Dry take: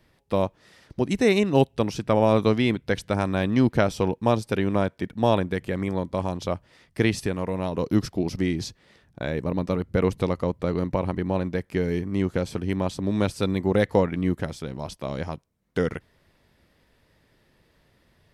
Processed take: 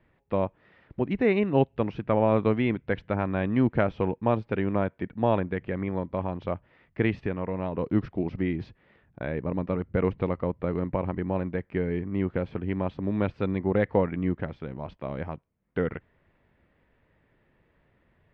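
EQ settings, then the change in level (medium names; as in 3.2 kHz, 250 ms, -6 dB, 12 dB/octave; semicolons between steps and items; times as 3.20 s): low-pass 2.6 kHz 24 dB/octave; -3.0 dB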